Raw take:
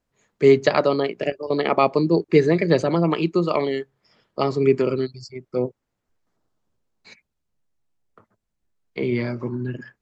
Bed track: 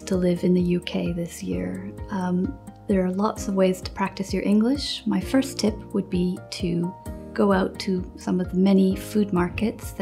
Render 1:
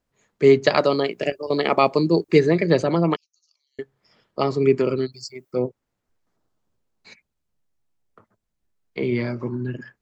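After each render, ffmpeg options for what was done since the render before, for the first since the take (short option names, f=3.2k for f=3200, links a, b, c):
-filter_complex "[0:a]asettb=1/sr,asplit=3[a][b][c];[a]atrim=end=0.674[d];[b]atrim=start=0.67:end=2.39,asetpts=PTS-STARTPTS,afade=t=in:d=0.004:c=qsin,afade=t=out:st=1.716:d=0.004:c=qsin,aemphasis=mode=production:type=50kf[e];[c]atrim=start=2.386[f];[d][e]acrossfade=d=0.004:c1=hsin:c2=qsin[g];[g][f]acrossfade=d=0.004:c1=qsin:c2=hsin,asettb=1/sr,asplit=3[h][i][j];[h]atrim=end=3.164[k];[i]atrim=start=3.16:end=3.79,asetpts=PTS-STARTPTS,afade=t=in:d=0.004:c=qsin,afade=t=out:st=0.626:d=0.004:c=qsin,asuperpass=centerf=5900:order=4:qfactor=7.7[l];[j]atrim=start=3.786[m];[k][l]acrossfade=d=0.004:c1=hsin:c2=qsin[n];[n][m]acrossfade=d=0.004:c1=qsin:c2=hsin,asplit=3[o][p][q];[o]afade=t=out:st=5.12:d=0.02[r];[p]aemphasis=mode=production:type=bsi,afade=t=in:st=5.12:d=0.02,afade=t=out:st=5.52:d=0.02[s];[q]afade=t=in:st=5.52:d=0.02[t];[r][s][t]amix=inputs=3:normalize=0"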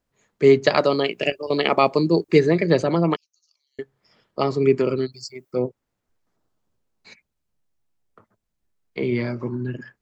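-filter_complex "[0:a]asettb=1/sr,asplit=3[a][b][c];[a]atrim=end=1.004[d];[b]atrim=start=1:end=1.68,asetpts=PTS-STARTPTS,afade=t=in:d=0.004:c=qsin,afade=t=out:st=0.676:d=0.004:c=qsin,equalizer=f=2.7k:w=3:g=9[e];[c]atrim=start=1.676[f];[d][e]acrossfade=d=0.004:c1=hsin:c2=qsin[g];[g][f]acrossfade=d=0.004:c1=qsin:c2=hsin"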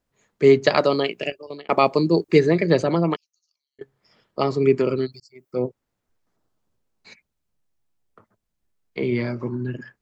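-filter_complex "[0:a]asplit=4[a][b][c][d];[a]atrim=end=1.69,asetpts=PTS-STARTPTS,afade=t=out:st=0.97:d=0.72[e];[b]atrim=start=1.69:end=3.81,asetpts=PTS-STARTPTS,afade=t=in:d=0.004:c=hsin,afade=t=out:st=1.24:d=0.88:silence=0.0944061[f];[c]atrim=start=3.81:end=5.2,asetpts=PTS-STARTPTS,afade=t=in:d=0.004:c=hsin:silence=0.0944061,afade=t=out:st=1.386:d=0.004:c=hsin[g];[d]atrim=start=5.2,asetpts=PTS-STARTPTS,afade=t=in:d=0.45[h];[e][f][g][h]concat=n=4:v=0:a=1"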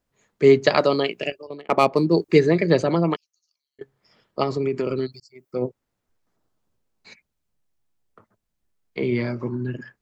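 -filter_complex "[0:a]asettb=1/sr,asplit=3[a][b][c];[a]atrim=end=1.474[d];[b]atrim=start=1.47:end=2.13,asetpts=PTS-STARTPTS,afade=t=in:d=0.004:c=qsin,afade=t=out:st=0.656:d=0.004:c=qsin,adynamicsmooth=sensitivity=1.5:basefreq=2.8k[e];[c]atrim=start=2.126[f];[d][e]acrossfade=d=0.004:c1=hsin:c2=qsin[g];[g][f]acrossfade=d=0.004:c1=qsin:c2=hsin,asettb=1/sr,asplit=3[h][i][j];[h]atrim=end=4.434[k];[i]atrim=start=4.43:end=5.62,asetpts=PTS-STARTPTS,afade=t=in:d=0.004:c=qsin,afade=t=out:st=1.186:d=0.004:c=qsin,acompressor=threshold=-19dB:ratio=6:attack=3.2:release=140:knee=1:detection=peak[l];[j]atrim=start=5.616[m];[k][l]acrossfade=d=0.004:c1=hsin:c2=qsin[n];[n][m]acrossfade=d=0.004:c1=qsin:c2=hsin"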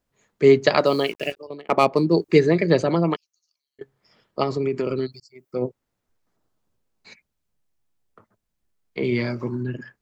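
-filter_complex "[0:a]asettb=1/sr,asplit=3[a][b][c];[a]atrim=end=0.864[d];[b]atrim=start=0.86:end=1.37,asetpts=PTS-STARTPTS,afade=t=in:d=0.004:c=qsin,afade=t=out:st=0.506:d=0.004:c=qsin,acrusher=bits=6:mix=0:aa=0.5[e];[c]atrim=start=1.366[f];[d][e]acrossfade=d=0.004:c1=hsin:c2=qsin[g];[g][f]acrossfade=d=0.004:c1=qsin:c2=hsin,asettb=1/sr,asplit=3[h][i][j];[h]atrim=end=9.044[k];[i]atrim=start=9.04:end=9.63,asetpts=PTS-STARTPTS,afade=t=in:d=0.004:c=qsin,afade=t=out:st=0.586:d=0.004:c=qsin,highshelf=f=3.1k:g=8[l];[j]atrim=start=9.626[m];[k][l]acrossfade=d=0.004:c1=hsin:c2=qsin[n];[n][m]acrossfade=d=0.004:c1=qsin:c2=hsin"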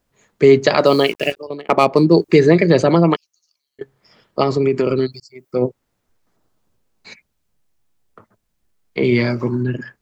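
-af "alimiter=level_in=7.5dB:limit=-1dB:release=50:level=0:latency=1"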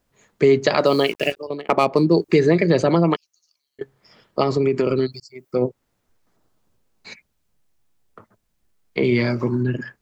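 -af "acompressor=threshold=-19dB:ratio=1.5"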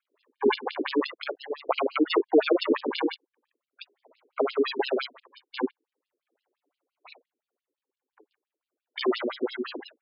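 -af "aresample=16000,acrusher=samples=17:mix=1:aa=0.000001:lfo=1:lforange=17:lforate=0.4,aresample=44100,afftfilt=real='re*between(b*sr/1024,340*pow(3800/340,0.5+0.5*sin(2*PI*5.8*pts/sr))/1.41,340*pow(3800/340,0.5+0.5*sin(2*PI*5.8*pts/sr))*1.41)':imag='im*between(b*sr/1024,340*pow(3800/340,0.5+0.5*sin(2*PI*5.8*pts/sr))/1.41,340*pow(3800/340,0.5+0.5*sin(2*PI*5.8*pts/sr))*1.41)':win_size=1024:overlap=0.75"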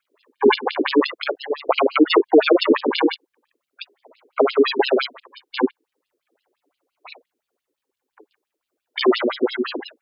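-af "volume=9dB,alimiter=limit=-3dB:level=0:latency=1"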